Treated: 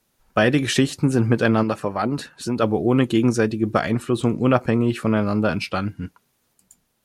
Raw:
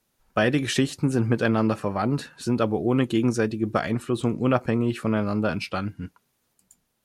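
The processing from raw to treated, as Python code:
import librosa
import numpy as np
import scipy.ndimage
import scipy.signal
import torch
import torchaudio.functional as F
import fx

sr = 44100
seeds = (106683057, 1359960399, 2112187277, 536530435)

y = fx.hpss(x, sr, part='harmonic', gain_db=-7, at=(1.63, 2.63))
y = F.gain(torch.from_numpy(y), 4.0).numpy()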